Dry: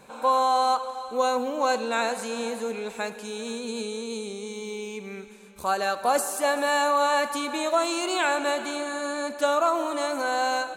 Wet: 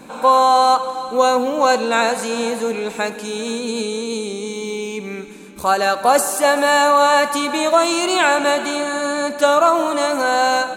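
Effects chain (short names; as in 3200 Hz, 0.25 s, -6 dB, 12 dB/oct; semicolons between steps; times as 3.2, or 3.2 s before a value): band noise 170–340 Hz -54 dBFS; gain +9 dB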